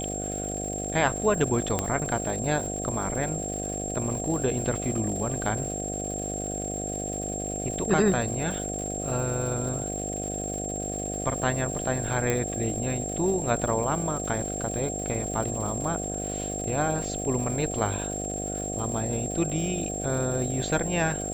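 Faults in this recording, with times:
mains buzz 50 Hz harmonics 15 −34 dBFS
surface crackle 300 per second −36 dBFS
whistle 7,500 Hz −33 dBFS
0:01.79: click −11 dBFS
0:12.30: click −12 dBFS

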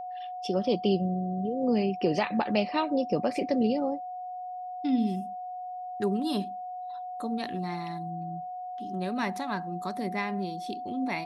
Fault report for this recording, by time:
whistle 730 Hz −35 dBFS

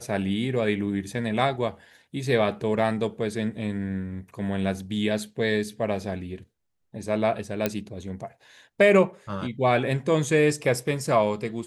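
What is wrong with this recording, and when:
0:07.66: click −9 dBFS

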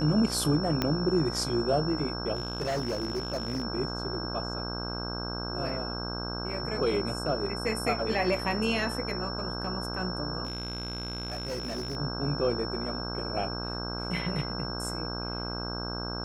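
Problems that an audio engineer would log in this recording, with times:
mains buzz 60 Hz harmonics 27 −36 dBFS
whistle 5,400 Hz −37 dBFS
0:00.82: click −12 dBFS
0:02.35–0:03.63: clipping −26.5 dBFS
0:10.44–0:11.97: clipping −30 dBFS

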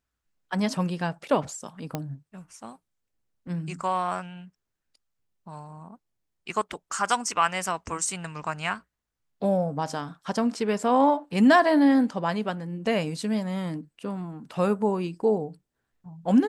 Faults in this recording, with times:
0:01.95: click −15 dBFS

